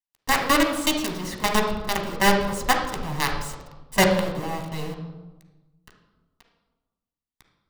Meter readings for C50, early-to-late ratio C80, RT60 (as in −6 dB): 5.0 dB, 8.0 dB, 1.2 s